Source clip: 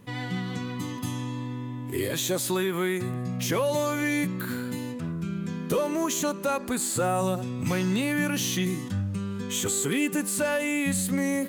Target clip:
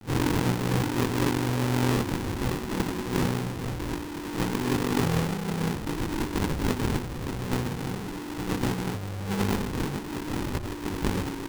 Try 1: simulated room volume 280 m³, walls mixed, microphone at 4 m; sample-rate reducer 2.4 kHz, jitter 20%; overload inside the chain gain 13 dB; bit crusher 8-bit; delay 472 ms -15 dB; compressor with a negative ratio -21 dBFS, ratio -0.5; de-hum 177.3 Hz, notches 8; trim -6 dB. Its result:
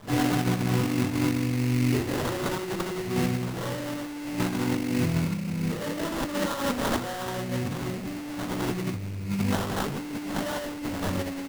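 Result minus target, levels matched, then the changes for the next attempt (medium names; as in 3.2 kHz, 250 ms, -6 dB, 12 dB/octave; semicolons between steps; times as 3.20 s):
sample-rate reducer: distortion -15 dB
change: sample-rate reducer 640 Hz, jitter 20%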